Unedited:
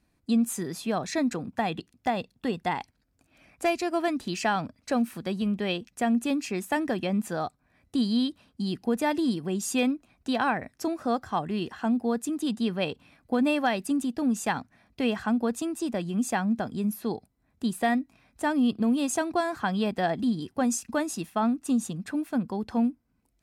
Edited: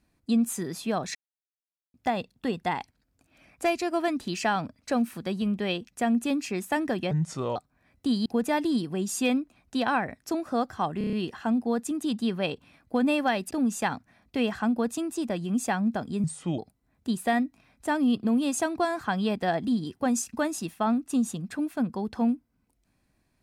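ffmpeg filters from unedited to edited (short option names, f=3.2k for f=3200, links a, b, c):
-filter_complex "[0:a]asplit=14[a][b][c][d][e][f][g][h][i][j][k][l][m][n];[a]atrim=end=1.15,asetpts=PTS-STARTPTS,afade=t=out:st=1.146:d=0.004:c=hsin[o];[b]atrim=start=1.15:end=1.94,asetpts=PTS-STARTPTS,volume=0[p];[c]atrim=start=1.94:end=7.114,asetpts=PTS-STARTPTS,afade=t=in:d=0.004:c=hsin[q];[d]atrim=start=7.11:end=7.45,asetpts=PTS-STARTPTS,asetrate=33516,aresample=44100[r];[e]atrim=start=7.446:end=8.152[s];[f]atrim=start=8.788:end=11.542[t];[g]atrim=start=11.508:end=11.542[u];[h]atrim=start=11.508:end=11.542[v];[i]atrim=start=11.508:end=11.542[w];[j]atrim=start=11.508:end=11.542[x];[k]atrim=start=11.508:end=13.892[y];[l]atrim=start=14.148:end=16.884[z];[m]atrim=start=16.88:end=17.14,asetpts=PTS-STARTPTS,asetrate=33075,aresample=44100[aa];[n]atrim=start=17.136[ab];[o][p][q]concat=n=3:v=0:a=1[ac];[ac][r]acrossfade=d=0.004:c1=hsin:c2=hsin[ad];[ad][s]acrossfade=d=0.004:c1=hsin:c2=hsin[ae];[ae][t]acrossfade=d=0.004:c1=hsin:c2=hsin[af];[af][u]acrossfade=d=0.004:c1=hsin:c2=hsin[ag];[ag][v]acrossfade=d=0.004:c1=hsin:c2=hsin[ah];[ah][w]acrossfade=d=0.004:c1=hsin:c2=hsin[ai];[ai][x]acrossfade=d=0.004:c1=hsin:c2=hsin[aj];[aj][y]acrossfade=d=0.004:c1=hsin:c2=hsin[ak];[ak][z]acrossfade=d=0.004:c1=hsin:c2=hsin[al];[al][aa]acrossfade=d=0.004:c1=hsin:c2=hsin[am];[am][ab]acrossfade=d=0.004:c1=hsin:c2=hsin"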